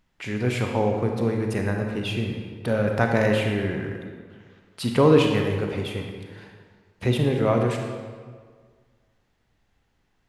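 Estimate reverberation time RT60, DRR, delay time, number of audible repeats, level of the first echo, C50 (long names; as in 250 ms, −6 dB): 1.7 s, 2.5 dB, no echo audible, no echo audible, no echo audible, 3.5 dB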